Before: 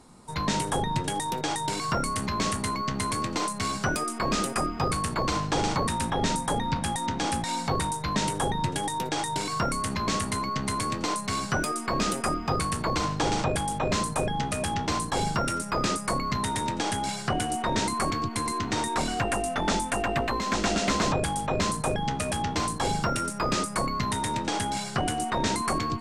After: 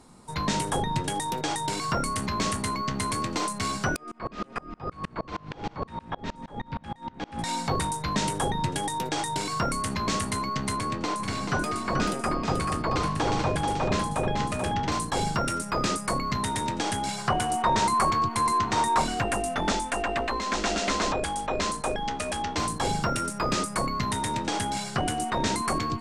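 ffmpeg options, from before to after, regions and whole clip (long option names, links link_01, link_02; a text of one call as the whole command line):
ffmpeg -i in.wav -filter_complex "[0:a]asettb=1/sr,asplit=3[link_01][link_02][link_03];[link_01]atrim=end=3.964[link_04];[link_02]atrim=start=3.96:end=7.39,asetpts=PTS-STARTPTS,afade=type=in:duration=0.004:curve=qsin,afade=type=out:start_time=3.426:duration=0.004:curve=qsin,lowpass=3000,aecho=1:1:184|368|552|736:0.126|0.0667|0.0354|0.0187,atrim=end_sample=151263,aeval=exprs='val(0)*pow(10,-30*if(lt(mod(-6.4*n/s,1),2*abs(-6.4)/1000),1-mod(-6.4*n/s,1)/(2*abs(-6.4)/1000),(mod(-6.4*n/s,1)-2*abs(-6.4)/1000)/(1-2*abs(-6.4)/1000))/20)':channel_layout=same[link_05];[link_03]atrim=start=7.386[link_06];[link_04][link_05]acrossfade=duration=0.004:curve1=hsin:curve2=qsin[link_07];[link_07][link_06]acrossfade=duration=0.004:curve1=qsin:curve2=hsin,asettb=1/sr,asplit=3[link_08][link_09][link_10];[link_08]atrim=end=10.764[link_11];[link_09]atrim=start=10.76:end=14.92,asetpts=PTS-STARTPTS,afade=type=in:duration=0.004:curve=qsin,afade=type=out:start_time=4.156:duration=0.004:curve=qsin,highshelf=frequency=5400:gain=-9.5,aecho=1:1:435:0.531,atrim=end_sample=183456[link_12];[link_10]atrim=start=14.916[link_13];[link_11][link_12]acrossfade=duration=0.004:curve1=hsin:curve2=qsin[link_14];[link_14][link_13]acrossfade=duration=0.004:curve1=qsin:curve2=hsin,asettb=1/sr,asplit=3[link_15][link_16][link_17];[link_15]atrim=end=17.184[link_18];[link_16]atrim=start=17.18:end=19.06,asetpts=PTS-STARTPTS,afade=type=in:duration=0.004:curve=qsin,afade=type=out:start_time=1.876:duration=0.004:curve=qsin,equalizer=frequency=1000:width=1.9:gain=8,bandreject=frequency=280:width=5[link_19];[link_17]atrim=start=19.056[link_20];[link_18][link_19]acrossfade=duration=0.004:curve1=hsin:curve2=qsin[link_21];[link_21][link_20]acrossfade=duration=0.004:curve1=qsin:curve2=hsin,asettb=1/sr,asplit=3[link_22][link_23][link_24];[link_22]atrim=end=19.724[link_25];[link_23]atrim=start=19.72:end=22.58,asetpts=PTS-STARTPTS,afade=type=in:duration=0.004:curve=qsin,afade=type=out:start_time=2.856:duration=0.004:curve=qsin,lowpass=9300,equalizer=frequency=130:width=1.3:gain=-13[link_26];[link_24]atrim=start=22.576[link_27];[link_25][link_26]acrossfade=duration=0.004:curve1=hsin:curve2=qsin[link_28];[link_28][link_27]acrossfade=duration=0.004:curve1=qsin:curve2=hsin" out.wav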